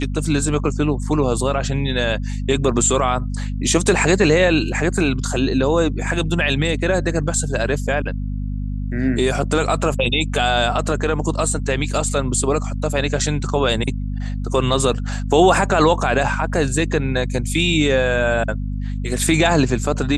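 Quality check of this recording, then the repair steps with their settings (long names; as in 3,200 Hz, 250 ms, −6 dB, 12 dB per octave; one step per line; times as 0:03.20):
mains hum 50 Hz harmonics 5 −24 dBFS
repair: hum removal 50 Hz, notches 5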